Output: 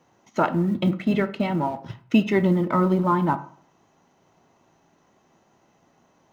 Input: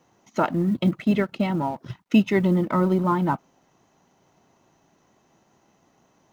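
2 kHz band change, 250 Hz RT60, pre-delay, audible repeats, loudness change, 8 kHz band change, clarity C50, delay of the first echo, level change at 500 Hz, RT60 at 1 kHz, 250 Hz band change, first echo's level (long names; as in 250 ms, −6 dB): +1.0 dB, 0.50 s, 9 ms, no echo audible, 0.0 dB, can't be measured, 15.5 dB, no echo audible, +0.5 dB, 0.50 s, −0.5 dB, no echo audible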